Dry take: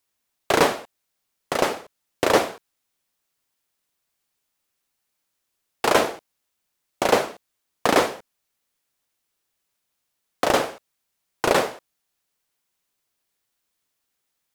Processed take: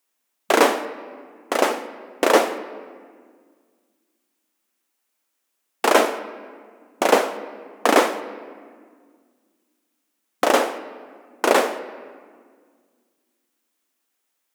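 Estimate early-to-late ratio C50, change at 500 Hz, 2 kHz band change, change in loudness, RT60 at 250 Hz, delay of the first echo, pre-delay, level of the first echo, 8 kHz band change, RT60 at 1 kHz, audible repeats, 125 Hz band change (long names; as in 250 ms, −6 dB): 12.5 dB, +3.0 dB, +2.5 dB, +2.0 dB, 2.5 s, no echo audible, 3 ms, no echo audible, +2.0 dB, 1.7 s, no echo audible, below −10 dB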